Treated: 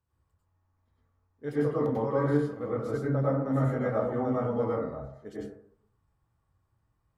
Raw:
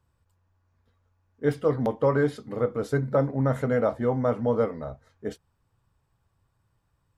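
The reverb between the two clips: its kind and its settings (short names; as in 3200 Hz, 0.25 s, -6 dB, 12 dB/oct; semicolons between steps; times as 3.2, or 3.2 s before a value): plate-style reverb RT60 0.64 s, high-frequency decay 0.3×, pre-delay 85 ms, DRR -7 dB; gain -12 dB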